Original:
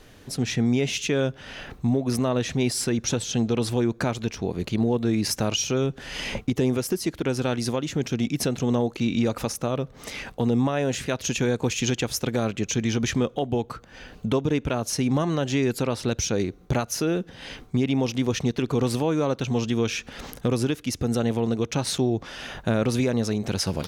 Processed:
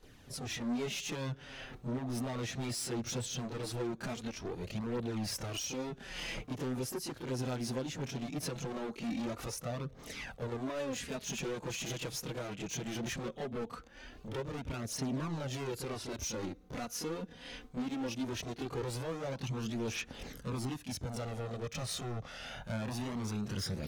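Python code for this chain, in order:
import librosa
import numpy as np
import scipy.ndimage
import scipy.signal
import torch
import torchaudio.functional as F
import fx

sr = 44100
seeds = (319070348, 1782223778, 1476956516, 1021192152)

y = np.clip(10.0 ** (26.5 / 20.0) * x, -1.0, 1.0) / 10.0 ** (26.5 / 20.0)
y = fx.chorus_voices(y, sr, voices=2, hz=0.1, base_ms=27, depth_ms=4.5, mix_pct=70)
y = y * 10.0 ** (-6.0 / 20.0)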